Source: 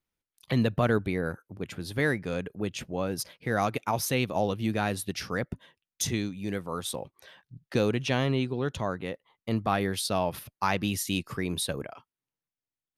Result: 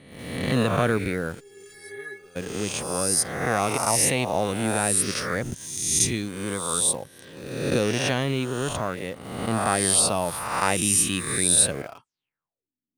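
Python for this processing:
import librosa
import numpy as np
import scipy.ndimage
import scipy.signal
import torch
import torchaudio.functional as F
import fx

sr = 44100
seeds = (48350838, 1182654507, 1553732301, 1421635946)

p1 = fx.spec_swells(x, sr, rise_s=1.14)
p2 = fx.filter_sweep_lowpass(p1, sr, from_hz=9200.0, to_hz=250.0, start_s=12.03, end_s=12.72, q=6.2)
p3 = fx.quant_dither(p2, sr, seeds[0], bits=6, dither='none')
p4 = p2 + F.gain(torch.from_numpy(p3), -10.0).numpy()
p5 = fx.stiff_resonator(p4, sr, f0_hz=400.0, decay_s=0.27, stiffness=0.008, at=(1.39, 2.35), fade=0.02)
y = F.gain(torch.from_numpy(p5), -2.0).numpy()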